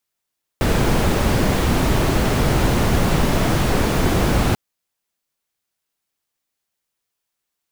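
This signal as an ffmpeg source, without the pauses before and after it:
-f lavfi -i "anoisesrc=c=brown:a=0.7:d=3.94:r=44100:seed=1"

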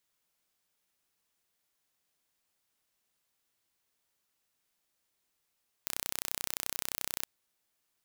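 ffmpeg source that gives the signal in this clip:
-f lavfi -i "aevalsrc='0.473*eq(mod(n,1400),0)':d=1.37:s=44100"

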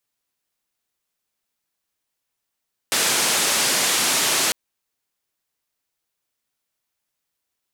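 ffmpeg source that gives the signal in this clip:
-f lavfi -i "anoisesrc=c=white:d=1.6:r=44100:seed=1,highpass=f=180,lowpass=f=9400,volume=-11.5dB"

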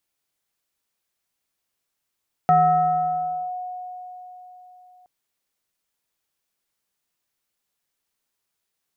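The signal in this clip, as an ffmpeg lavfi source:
-f lavfi -i "aevalsrc='0.266*pow(10,-3*t/3.97)*sin(2*PI*729*t+0.61*clip(1-t/1.03,0,1)*sin(2*PI*0.78*729*t))':d=2.57:s=44100"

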